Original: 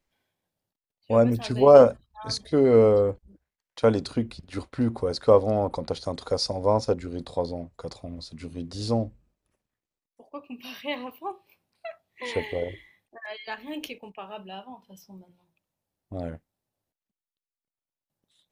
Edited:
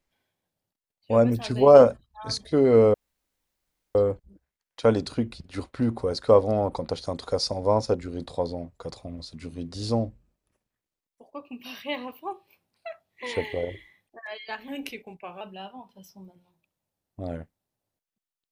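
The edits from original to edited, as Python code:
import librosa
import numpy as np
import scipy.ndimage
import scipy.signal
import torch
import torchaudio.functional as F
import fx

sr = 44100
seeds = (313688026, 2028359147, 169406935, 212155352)

y = fx.edit(x, sr, fx.insert_room_tone(at_s=2.94, length_s=1.01),
    fx.speed_span(start_s=13.67, length_s=0.67, speed=0.92), tone=tone)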